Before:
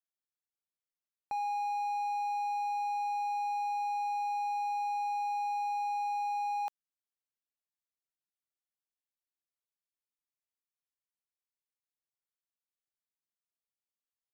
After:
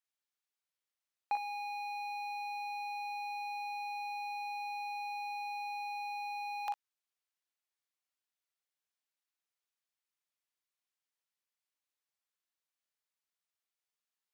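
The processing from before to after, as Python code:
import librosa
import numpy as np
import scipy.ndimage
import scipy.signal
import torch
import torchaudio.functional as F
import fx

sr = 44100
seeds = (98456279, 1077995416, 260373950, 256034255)

y = fx.highpass(x, sr, hz=1000.0, slope=6)
y = fx.high_shelf(y, sr, hz=7100.0, db=-8.0)
y = fx.leveller(y, sr, passes=1)
y = fx.rider(y, sr, range_db=10, speed_s=0.5)
y = fx.room_early_taps(y, sr, ms=(42, 58), db=(-6.5, -10.0))
y = y * librosa.db_to_amplitude(6.5)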